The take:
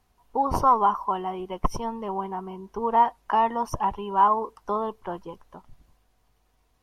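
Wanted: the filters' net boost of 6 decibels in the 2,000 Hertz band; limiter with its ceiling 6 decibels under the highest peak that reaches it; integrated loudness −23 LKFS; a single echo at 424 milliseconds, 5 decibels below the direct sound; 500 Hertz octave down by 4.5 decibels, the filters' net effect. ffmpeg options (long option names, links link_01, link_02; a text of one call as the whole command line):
ffmpeg -i in.wav -af "equalizer=frequency=500:width_type=o:gain=-6.5,equalizer=frequency=2000:width_type=o:gain=8,alimiter=limit=-15dB:level=0:latency=1,aecho=1:1:424:0.562,volume=4dB" out.wav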